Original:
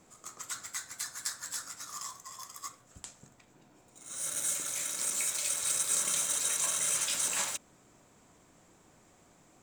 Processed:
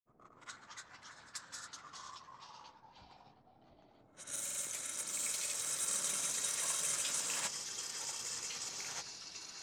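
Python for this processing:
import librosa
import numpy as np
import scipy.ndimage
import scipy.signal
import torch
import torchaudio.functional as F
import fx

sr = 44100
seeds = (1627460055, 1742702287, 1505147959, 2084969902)

y = fx.env_lowpass(x, sr, base_hz=680.0, full_db=-30.5)
y = fx.granulator(y, sr, seeds[0], grain_ms=100.0, per_s=20.0, spray_ms=100.0, spread_st=0)
y = fx.echo_pitch(y, sr, ms=122, semitones=-3, count=3, db_per_echo=-6.0)
y = y * 10.0 ** (-4.5 / 20.0)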